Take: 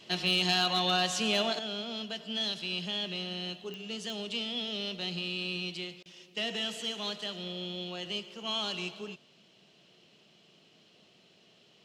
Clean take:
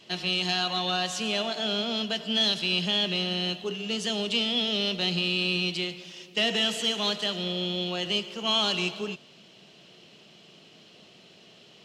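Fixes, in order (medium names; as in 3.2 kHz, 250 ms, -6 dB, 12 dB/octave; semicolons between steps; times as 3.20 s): clip repair -19.5 dBFS; de-click; interpolate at 6.03 s, 25 ms; trim 0 dB, from 1.59 s +8.5 dB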